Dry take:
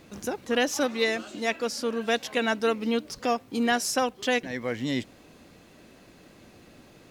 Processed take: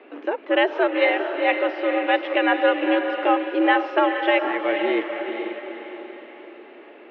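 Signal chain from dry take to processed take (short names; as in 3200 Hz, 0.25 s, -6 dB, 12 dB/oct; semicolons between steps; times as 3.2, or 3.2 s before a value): diffused feedback echo 0.47 s, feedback 48%, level -6 dB; mistuned SSB +88 Hz 190–2800 Hz; gain +6 dB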